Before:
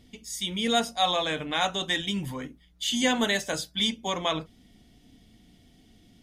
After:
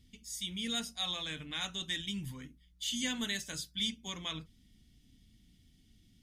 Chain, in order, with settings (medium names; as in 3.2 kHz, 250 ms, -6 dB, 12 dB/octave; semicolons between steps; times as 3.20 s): amplifier tone stack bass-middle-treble 6-0-2; trim +8.5 dB